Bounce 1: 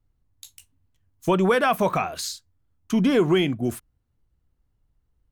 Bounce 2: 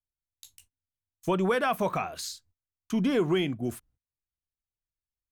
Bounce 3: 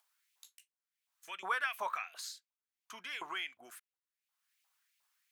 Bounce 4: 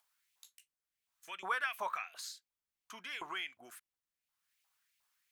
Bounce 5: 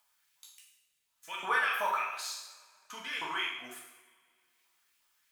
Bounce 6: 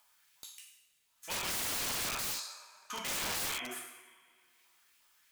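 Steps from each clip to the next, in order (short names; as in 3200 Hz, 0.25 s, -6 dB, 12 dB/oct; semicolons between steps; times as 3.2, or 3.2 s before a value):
gate -54 dBFS, range -23 dB; gain -6 dB
LFO high-pass saw up 2.8 Hz 840–2700 Hz; upward compressor, threshold -51 dBFS; gain -8 dB
low shelf 160 Hz +10 dB; gain -1 dB
two-slope reverb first 0.8 s, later 2.5 s, from -21 dB, DRR -3 dB; gain +2 dB
in parallel at -2.5 dB: limiter -24.5 dBFS, peak gain reduction 7.5 dB; on the sum: wrapped overs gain 30.5 dB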